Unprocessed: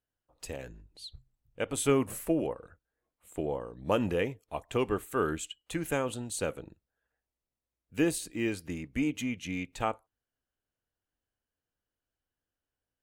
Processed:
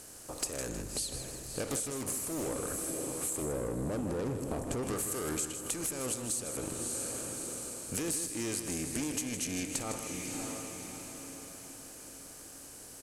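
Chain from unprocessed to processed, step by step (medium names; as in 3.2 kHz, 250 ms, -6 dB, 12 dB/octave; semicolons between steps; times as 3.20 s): spectral levelling over time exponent 0.6; 3.42–4.83 s: tilt shelf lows +9.5 dB; peak limiter -18 dBFS, peak gain reduction 10 dB; echo that smears into a reverb 615 ms, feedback 45%, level -16 dB; saturation -27.5 dBFS, distortion -10 dB; high-order bell 7.8 kHz +14.5 dB; compression 10:1, threshold -39 dBFS, peak gain reduction 21 dB; feedback delay 157 ms, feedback 41%, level -8.5 dB; 1.64–2.52 s: loudspeaker Doppler distortion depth 0.31 ms; trim +6 dB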